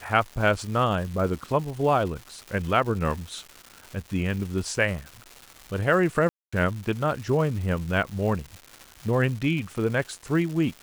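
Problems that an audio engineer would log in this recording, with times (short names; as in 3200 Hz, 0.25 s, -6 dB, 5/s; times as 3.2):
crackle 430/s -34 dBFS
6.29–6.53 gap 0.235 s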